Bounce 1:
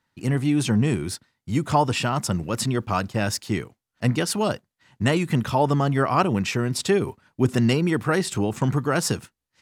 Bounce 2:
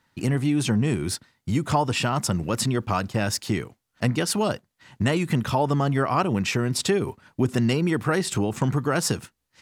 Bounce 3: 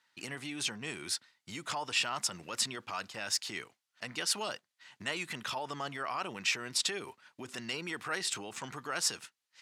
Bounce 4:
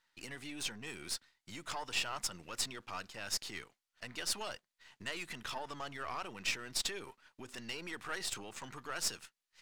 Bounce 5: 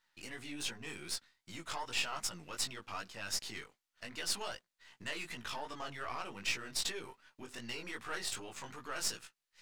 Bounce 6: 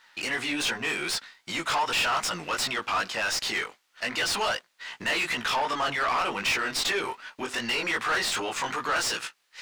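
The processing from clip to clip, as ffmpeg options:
ffmpeg -i in.wav -af "acompressor=threshold=-33dB:ratio=2,volume=7dB" out.wav
ffmpeg -i in.wav -af "highshelf=frequency=5000:gain=-10,alimiter=limit=-17dB:level=0:latency=1:release=18,bandpass=frequency=6300:width_type=q:width=0.51:csg=0,volume=3dB" out.wav
ffmpeg -i in.wav -af "aeval=exprs='if(lt(val(0),0),0.447*val(0),val(0))':channel_layout=same,volume=-2dB" out.wav
ffmpeg -i in.wav -af "flanger=delay=16.5:depth=4.4:speed=2.6,volume=3dB" out.wav
ffmpeg -i in.wav -filter_complex "[0:a]asplit=2[link_01][link_02];[link_02]highpass=frequency=720:poles=1,volume=26dB,asoftclip=type=tanh:threshold=-19dB[link_03];[link_01][link_03]amix=inputs=2:normalize=0,lowpass=frequency=3400:poles=1,volume=-6dB,volume=3dB" out.wav

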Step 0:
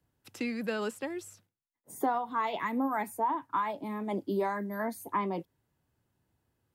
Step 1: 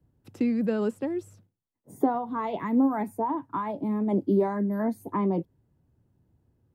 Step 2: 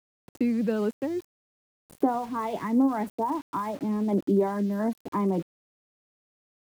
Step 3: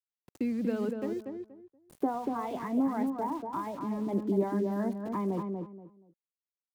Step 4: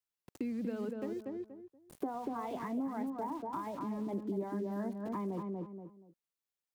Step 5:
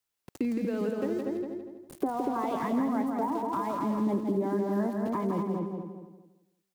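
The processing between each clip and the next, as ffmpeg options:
ffmpeg -i in.wav -af "tiltshelf=frequency=730:gain=10,volume=2dB" out.wav
ffmpeg -i in.wav -af "aeval=exprs='val(0)*gte(abs(val(0)),0.00794)':channel_layout=same" out.wav
ffmpeg -i in.wav -filter_complex "[0:a]asplit=2[link_01][link_02];[link_02]adelay=238,lowpass=frequency=1300:poles=1,volume=-4dB,asplit=2[link_03][link_04];[link_04]adelay=238,lowpass=frequency=1300:poles=1,volume=0.25,asplit=2[link_05][link_06];[link_06]adelay=238,lowpass=frequency=1300:poles=1,volume=0.25[link_07];[link_01][link_03][link_05][link_07]amix=inputs=4:normalize=0,volume=-6dB" out.wav
ffmpeg -i in.wav -af "acompressor=threshold=-39dB:ratio=2.5,volume=1dB" out.wav
ffmpeg -i in.wav -af "aecho=1:1:165|330|495|660:0.562|0.174|0.054|0.0168,volume=7.5dB" out.wav

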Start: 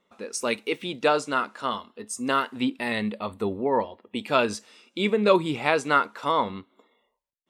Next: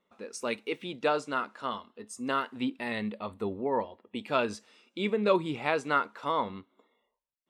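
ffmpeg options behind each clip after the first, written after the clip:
ffmpeg -i in.wav -af "highshelf=frequency=5300:gain=-7,volume=-5.5dB" out.wav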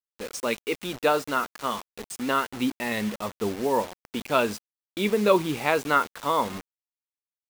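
ffmpeg -i in.wav -af "acrusher=bits=6:mix=0:aa=0.000001,volume=5dB" out.wav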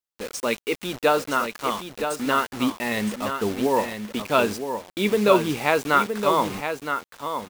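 ffmpeg -i in.wav -af "aecho=1:1:967:0.422,volume=2.5dB" out.wav

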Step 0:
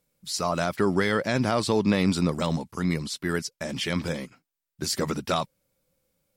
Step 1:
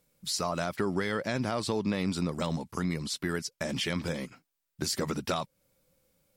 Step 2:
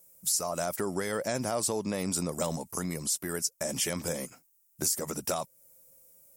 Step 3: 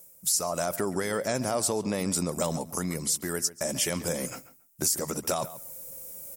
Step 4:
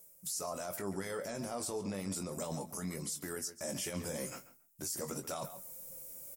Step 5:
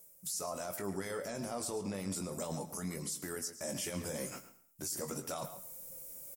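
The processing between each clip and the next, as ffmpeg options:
ffmpeg -i in.wav -af "acompressor=threshold=-34dB:ratio=2.5,volume=3dB" out.wav
ffmpeg -i in.wav -af "equalizer=frequency=620:width=1.1:gain=7.5,aexciter=amount=8.3:drive=5.1:freq=5800,alimiter=limit=-12.5dB:level=0:latency=1:release=394,volume=-4dB" out.wav
ffmpeg -i in.wav -filter_complex "[0:a]areverse,acompressor=mode=upward:threshold=-31dB:ratio=2.5,areverse,asplit=2[link_01][link_02];[link_02]adelay=138,lowpass=frequency=3300:poles=1,volume=-15dB,asplit=2[link_03][link_04];[link_04]adelay=138,lowpass=frequency=3300:poles=1,volume=0.16[link_05];[link_01][link_03][link_05]amix=inputs=3:normalize=0,volume=2.5dB" out.wav
ffmpeg -i in.wav -filter_complex "[0:a]alimiter=limit=-22.5dB:level=0:latency=1:release=30,flanger=delay=4.4:depth=9:regen=67:speed=0.35:shape=triangular,asplit=2[link_01][link_02];[link_02]adelay=21,volume=-8dB[link_03];[link_01][link_03]amix=inputs=2:normalize=0,volume=-2.5dB" out.wav
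ffmpeg -i in.wav -af "aecho=1:1:107|214|321:0.158|0.0444|0.0124" out.wav

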